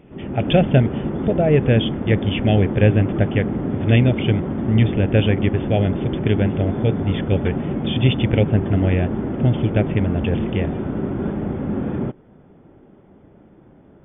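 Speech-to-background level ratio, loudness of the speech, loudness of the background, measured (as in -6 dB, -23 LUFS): 4.0 dB, -20.5 LUFS, -24.5 LUFS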